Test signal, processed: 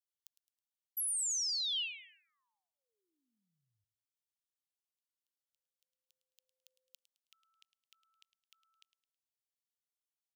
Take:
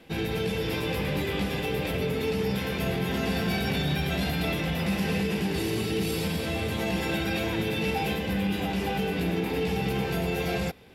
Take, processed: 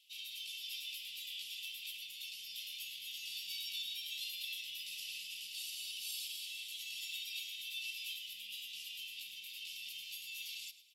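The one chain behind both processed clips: elliptic high-pass 2.9 kHz, stop band 50 dB; on a send: feedback delay 107 ms, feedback 36%, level -15 dB; on the sum: trim -4.5 dB

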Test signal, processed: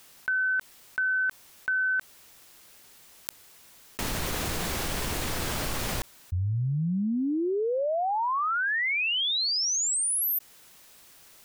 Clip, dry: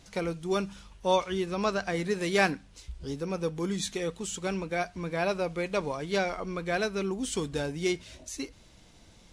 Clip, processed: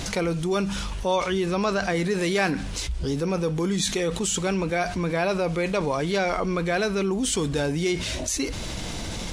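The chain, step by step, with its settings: level flattener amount 70%

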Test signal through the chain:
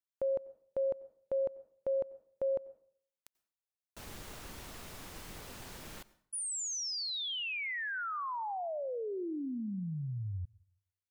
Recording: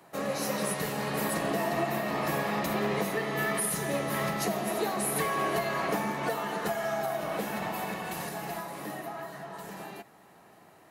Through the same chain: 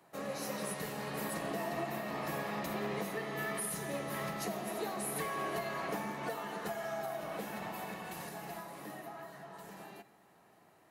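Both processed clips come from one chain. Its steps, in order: plate-style reverb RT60 0.57 s, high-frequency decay 0.8×, pre-delay 80 ms, DRR 19 dB; trim -8 dB

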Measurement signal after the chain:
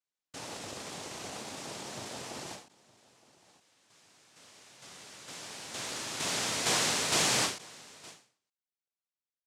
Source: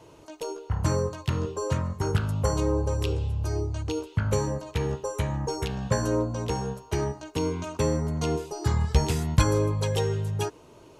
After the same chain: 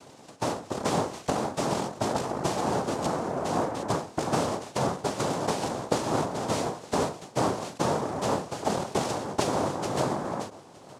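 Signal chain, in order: dynamic bell 420 Hz, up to +4 dB, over -36 dBFS, Q 0.82; noise-vocoded speech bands 2; gain riding within 4 dB 0.5 s; delay 916 ms -21.5 dB; endings held to a fixed fall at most 130 dB/s; trim -2 dB

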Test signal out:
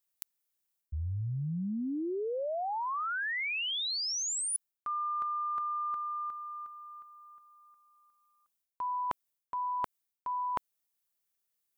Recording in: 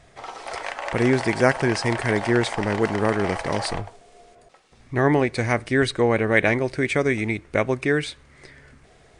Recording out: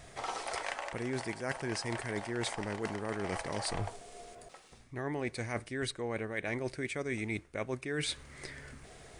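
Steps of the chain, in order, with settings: treble shelf 8.1 kHz +12 dB; reverse; compression 20:1, threshold -32 dBFS; reverse

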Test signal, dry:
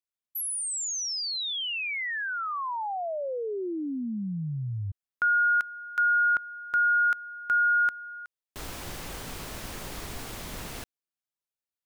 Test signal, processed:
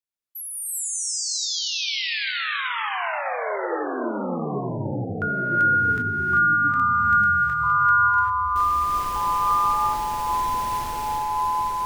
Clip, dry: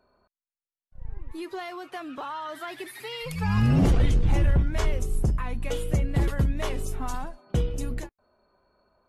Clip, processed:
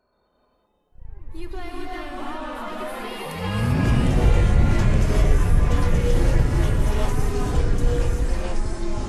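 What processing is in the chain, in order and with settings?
gated-style reverb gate 420 ms rising, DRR -3 dB; ever faster or slower copies 127 ms, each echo -3 st, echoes 3; trim -2.5 dB

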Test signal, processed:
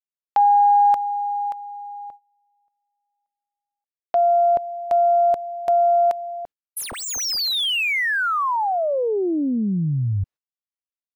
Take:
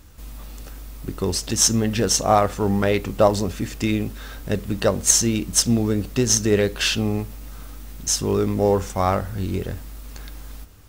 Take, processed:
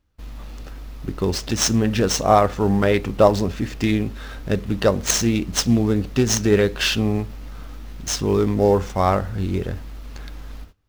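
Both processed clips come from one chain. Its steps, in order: median filter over 5 samples; gate -42 dBFS, range -23 dB; loudspeaker Doppler distortion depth 0.14 ms; trim +2 dB

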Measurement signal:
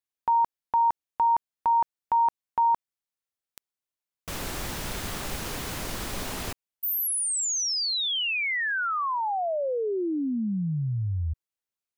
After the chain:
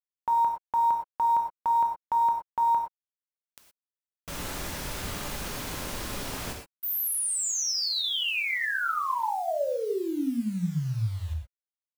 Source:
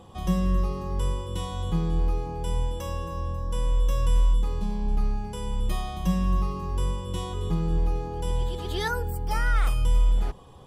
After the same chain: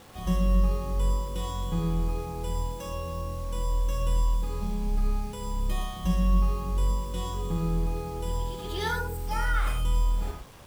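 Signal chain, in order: bit crusher 8-bit; gated-style reverb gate 140 ms flat, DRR 1.5 dB; trim -3.5 dB

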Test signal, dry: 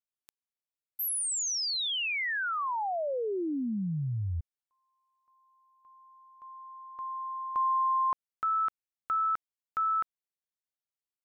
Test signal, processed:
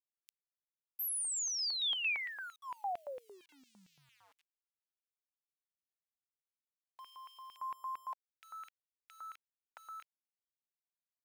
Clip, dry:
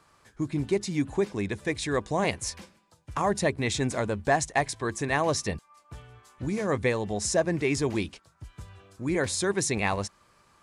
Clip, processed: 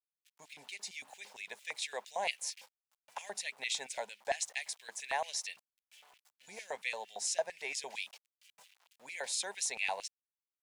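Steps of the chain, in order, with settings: static phaser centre 320 Hz, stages 6; small samples zeroed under -51.5 dBFS; LFO high-pass square 4.4 Hz 900–2600 Hz; trim -5.5 dB

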